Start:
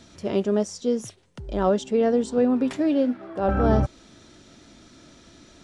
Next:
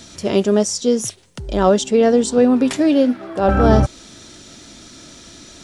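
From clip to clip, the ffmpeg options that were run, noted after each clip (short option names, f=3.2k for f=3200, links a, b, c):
-af "highshelf=f=3.8k:g=11,volume=7dB"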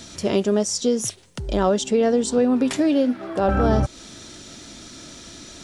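-af "acompressor=threshold=-19dB:ratio=2"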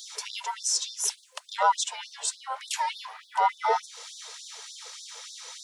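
-af "afftfilt=real='real(if(between(b,1,1008),(2*floor((b-1)/24)+1)*24-b,b),0)':imag='imag(if(between(b,1,1008),(2*floor((b-1)/24)+1)*24-b,b),0)*if(between(b,1,1008),-1,1)':win_size=2048:overlap=0.75,afftfilt=real='re*gte(b*sr/1024,420*pow(3500/420,0.5+0.5*sin(2*PI*3.4*pts/sr)))':imag='im*gte(b*sr/1024,420*pow(3500/420,0.5+0.5*sin(2*PI*3.4*pts/sr)))':win_size=1024:overlap=0.75"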